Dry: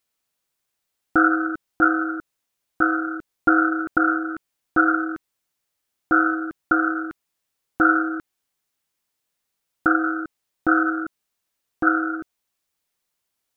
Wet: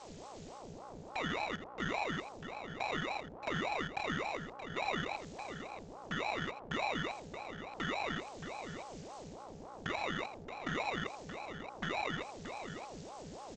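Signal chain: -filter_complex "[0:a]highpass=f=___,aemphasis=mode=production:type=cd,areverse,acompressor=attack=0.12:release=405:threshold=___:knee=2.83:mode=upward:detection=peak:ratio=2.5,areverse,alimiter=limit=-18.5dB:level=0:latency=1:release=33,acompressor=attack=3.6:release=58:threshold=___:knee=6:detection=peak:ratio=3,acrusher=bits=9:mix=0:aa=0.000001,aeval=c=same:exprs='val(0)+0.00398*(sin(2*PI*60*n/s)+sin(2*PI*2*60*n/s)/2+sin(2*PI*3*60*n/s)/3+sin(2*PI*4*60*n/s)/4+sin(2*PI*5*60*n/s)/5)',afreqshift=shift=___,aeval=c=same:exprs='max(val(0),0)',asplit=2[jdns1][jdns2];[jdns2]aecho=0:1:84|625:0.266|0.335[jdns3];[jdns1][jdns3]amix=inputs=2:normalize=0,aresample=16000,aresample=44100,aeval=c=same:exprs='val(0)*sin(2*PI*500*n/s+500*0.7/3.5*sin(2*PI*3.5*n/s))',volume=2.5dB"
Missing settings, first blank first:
1.1k, -23dB, -34dB, 190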